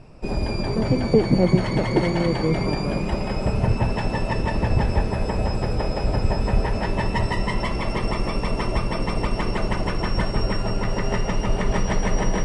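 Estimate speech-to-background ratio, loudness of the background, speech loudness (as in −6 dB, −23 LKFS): 2.0 dB, −25.0 LKFS, −23.0 LKFS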